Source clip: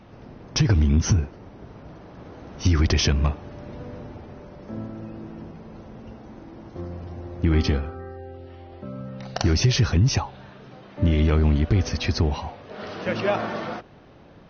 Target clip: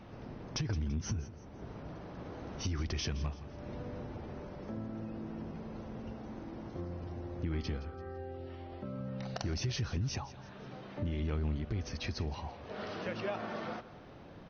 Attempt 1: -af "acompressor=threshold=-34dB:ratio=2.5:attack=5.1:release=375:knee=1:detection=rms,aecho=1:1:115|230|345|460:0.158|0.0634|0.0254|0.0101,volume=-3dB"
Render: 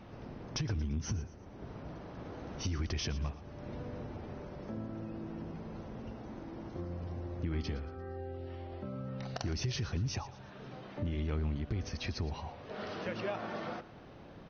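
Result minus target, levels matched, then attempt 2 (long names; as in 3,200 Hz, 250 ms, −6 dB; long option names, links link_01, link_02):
echo 53 ms early
-af "acompressor=threshold=-34dB:ratio=2.5:attack=5.1:release=375:knee=1:detection=rms,aecho=1:1:168|336|504|672:0.158|0.0634|0.0254|0.0101,volume=-3dB"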